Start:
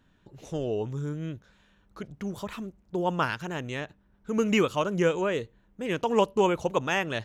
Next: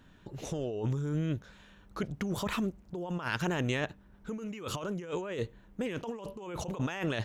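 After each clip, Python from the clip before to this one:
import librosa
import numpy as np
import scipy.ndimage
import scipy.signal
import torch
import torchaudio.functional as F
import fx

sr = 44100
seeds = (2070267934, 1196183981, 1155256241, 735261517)

y = fx.over_compress(x, sr, threshold_db=-35.0, ratio=-1.0)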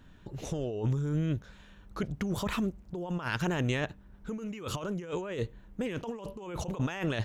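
y = fx.low_shelf(x, sr, hz=100.0, db=7.5)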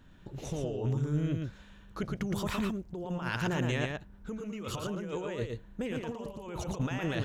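y = x + 10.0 ** (-4.0 / 20.0) * np.pad(x, (int(115 * sr / 1000.0), 0))[:len(x)]
y = F.gain(torch.from_numpy(y), -2.0).numpy()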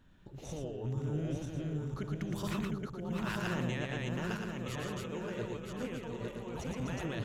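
y = fx.reverse_delay_fb(x, sr, ms=486, feedback_pct=57, wet_db=-1.0)
y = F.gain(torch.from_numpy(y), -6.0).numpy()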